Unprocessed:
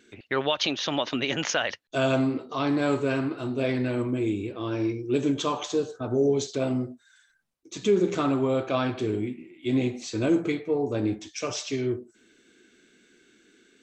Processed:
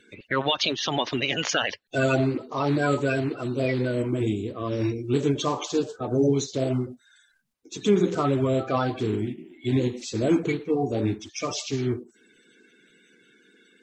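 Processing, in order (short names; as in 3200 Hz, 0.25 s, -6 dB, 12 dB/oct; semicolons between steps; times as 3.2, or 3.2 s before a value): bin magnitudes rounded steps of 30 dB; gain +2 dB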